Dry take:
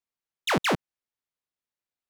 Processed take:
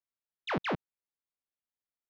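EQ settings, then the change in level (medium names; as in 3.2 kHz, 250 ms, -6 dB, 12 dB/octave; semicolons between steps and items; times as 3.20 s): distance through air 250 m; -6.5 dB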